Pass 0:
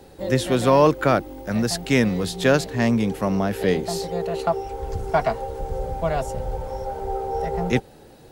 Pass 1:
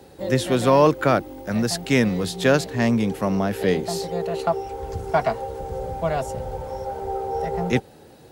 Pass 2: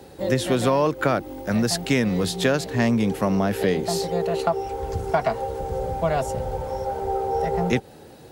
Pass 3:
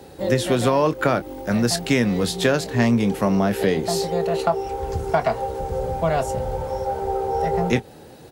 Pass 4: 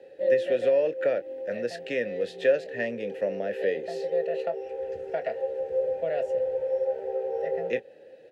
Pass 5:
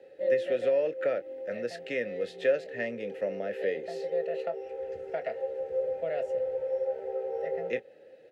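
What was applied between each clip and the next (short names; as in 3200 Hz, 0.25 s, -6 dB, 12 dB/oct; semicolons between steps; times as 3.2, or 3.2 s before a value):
HPF 64 Hz
compressor 6:1, threshold -19 dBFS, peak gain reduction 8 dB; gain +2.5 dB
doubler 25 ms -12 dB; gain +1.5 dB
vowel filter e; gain +2.5 dB
small resonant body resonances 1300/2100 Hz, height 10 dB, ringing for 45 ms; gain -3.5 dB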